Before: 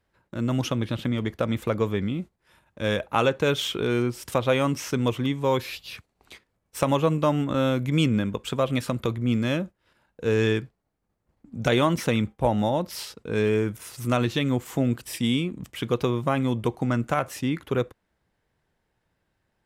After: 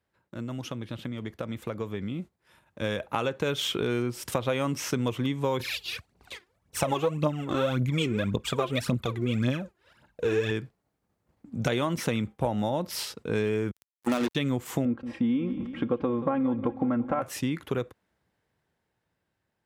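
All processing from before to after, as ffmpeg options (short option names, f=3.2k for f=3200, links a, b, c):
-filter_complex "[0:a]asettb=1/sr,asplit=3[a][b][c];[a]atrim=end=5.604[d];[b]atrim=start=5.6:end=10.51,asetpts=PTS-STARTPTS,afade=t=in:d=0.004:c=qsin,afade=t=out:st=4.906:d=0.004:c=qsin,highshelf=f=10k:g=-5.5,aphaser=in_gain=1:out_gain=1:delay=3:decay=0.7:speed=1.8:type=triangular[e];[c]atrim=start=10.506[f];[d][e]acrossfade=d=0.004:c1=hsin:c2=qsin[g];[g][f]acrossfade=d=0.004:c1=qsin:c2=hsin,asettb=1/sr,asplit=3[h][i][j];[h]atrim=end=13.714[k];[i]atrim=start=13.71:end=14.35,asetpts=PTS-STARTPTS,afade=t=in:d=0.004:c=qsin,afade=t=out:st=0.636:d=0.004:c=qsin,lowshelf=f=190:t=q:w=3:g=-9.5,acrusher=bits=3:mix=0:aa=0.5[l];[j]atrim=start=14.346[m];[k][l]acrossfade=d=0.004:c1=hsin:c2=qsin[n];[n][m]acrossfade=d=0.004:c1=qsin:c2=hsin,asettb=1/sr,asplit=3[o][p][q];[o]atrim=end=14.854[r];[p]atrim=start=14.85:end=17.22,asetpts=PTS-STARTPTS,afade=t=in:d=0.004:c=qsin,afade=t=out:st=2.366:d=0.004:c=qsin,lowpass=1.3k,aecho=1:1:3.7:0.7,atrim=end_sample=104517,aecho=1:1:179|358|537|716|895:0.158|0.0903|0.0515|0.0294|0.0167,atrim=end_sample=104517[s];[q]atrim=start=17.216[t];[r][s]acrossfade=d=0.004:c1=hsin:c2=qsin[u];[u][t]acrossfade=d=0.004:c1=qsin:c2=hsin,acompressor=threshold=-26dB:ratio=5,highpass=69,dynaudnorm=f=560:g=9:m=8dB,volume=-5.5dB"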